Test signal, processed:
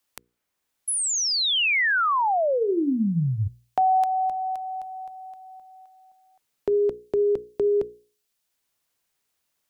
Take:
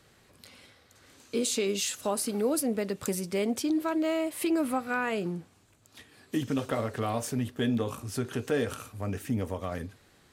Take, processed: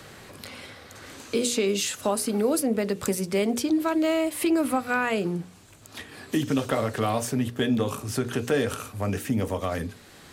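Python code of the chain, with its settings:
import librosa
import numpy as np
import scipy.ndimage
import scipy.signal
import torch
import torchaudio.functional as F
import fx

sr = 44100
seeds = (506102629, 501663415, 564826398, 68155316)

y = fx.hum_notches(x, sr, base_hz=60, count=8)
y = fx.band_squash(y, sr, depth_pct=40)
y = F.gain(torch.from_numpy(y), 5.0).numpy()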